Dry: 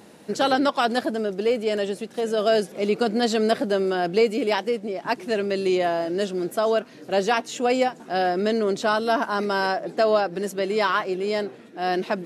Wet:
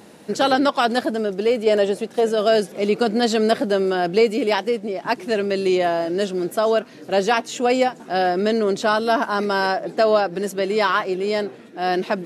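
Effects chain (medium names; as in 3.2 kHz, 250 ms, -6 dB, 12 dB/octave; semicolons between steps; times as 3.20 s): 1.66–2.29 s: dynamic bell 670 Hz, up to +6 dB, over -37 dBFS, Q 0.78; trim +3 dB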